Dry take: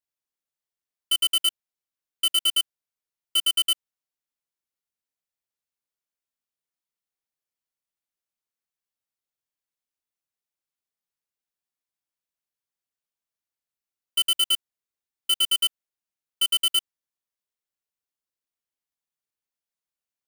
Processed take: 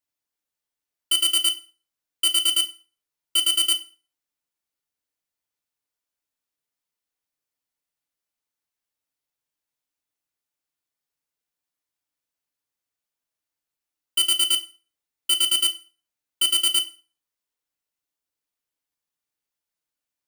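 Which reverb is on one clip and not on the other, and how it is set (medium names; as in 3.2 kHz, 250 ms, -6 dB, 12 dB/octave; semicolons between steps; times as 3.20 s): FDN reverb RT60 0.39 s, low-frequency decay 0.95×, high-frequency decay 0.85×, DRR 5.5 dB; trim +2.5 dB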